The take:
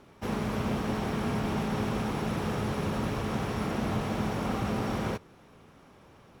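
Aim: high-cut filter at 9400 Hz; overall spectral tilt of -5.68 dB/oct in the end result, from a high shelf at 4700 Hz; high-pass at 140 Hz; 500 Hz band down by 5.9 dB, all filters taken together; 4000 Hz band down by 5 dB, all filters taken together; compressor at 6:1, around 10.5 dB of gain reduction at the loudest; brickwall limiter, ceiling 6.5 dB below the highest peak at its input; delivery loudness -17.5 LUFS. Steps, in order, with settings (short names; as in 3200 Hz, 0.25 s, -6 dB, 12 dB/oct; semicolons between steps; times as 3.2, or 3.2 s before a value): HPF 140 Hz; LPF 9400 Hz; bell 500 Hz -7.5 dB; bell 4000 Hz -4 dB; high shelf 4700 Hz -5.5 dB; compressor 6:1, threshold -41 dBFS; gain +29.5 dB; limiter -8.5 dBFS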